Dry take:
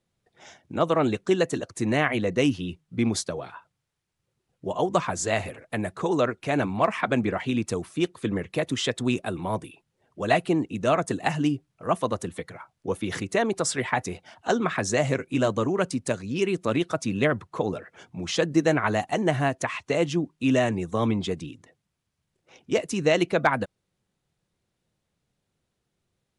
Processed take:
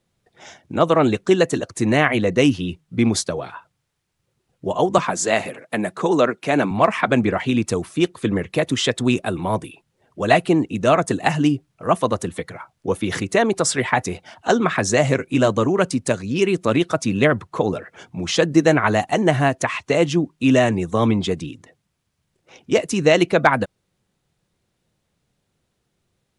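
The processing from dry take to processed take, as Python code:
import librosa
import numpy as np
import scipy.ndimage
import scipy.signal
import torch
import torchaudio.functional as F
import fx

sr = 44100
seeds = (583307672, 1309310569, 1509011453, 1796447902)

y = fx.highpass(x, sr, hz=150.0, slope=24, at=(4.98, 6.71))
y = y * 10.0 ** (6.5 / 20.0)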